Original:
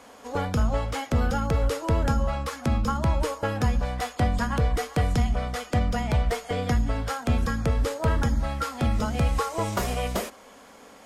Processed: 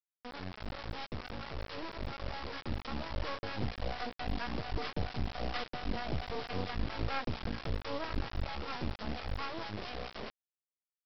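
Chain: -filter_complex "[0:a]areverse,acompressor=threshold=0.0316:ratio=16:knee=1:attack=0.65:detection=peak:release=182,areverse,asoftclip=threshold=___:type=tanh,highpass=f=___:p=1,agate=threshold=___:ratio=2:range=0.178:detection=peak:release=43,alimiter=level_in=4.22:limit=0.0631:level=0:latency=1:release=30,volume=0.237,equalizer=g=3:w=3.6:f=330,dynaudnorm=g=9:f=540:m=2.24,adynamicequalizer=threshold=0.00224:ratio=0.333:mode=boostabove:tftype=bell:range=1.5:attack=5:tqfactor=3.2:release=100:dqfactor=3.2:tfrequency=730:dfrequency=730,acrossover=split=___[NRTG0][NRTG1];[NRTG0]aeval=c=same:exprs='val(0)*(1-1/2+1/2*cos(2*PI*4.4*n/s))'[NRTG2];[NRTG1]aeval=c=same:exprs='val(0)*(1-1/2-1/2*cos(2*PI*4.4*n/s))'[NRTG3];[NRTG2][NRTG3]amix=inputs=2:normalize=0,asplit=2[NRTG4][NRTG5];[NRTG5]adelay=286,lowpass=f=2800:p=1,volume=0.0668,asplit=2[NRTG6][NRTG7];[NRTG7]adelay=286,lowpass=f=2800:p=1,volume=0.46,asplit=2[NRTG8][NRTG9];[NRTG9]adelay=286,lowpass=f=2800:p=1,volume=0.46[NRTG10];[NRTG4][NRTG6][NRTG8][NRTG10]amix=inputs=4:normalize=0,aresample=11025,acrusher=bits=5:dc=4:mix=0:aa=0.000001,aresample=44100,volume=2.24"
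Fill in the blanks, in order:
0.0398, 42, 0.0112, 630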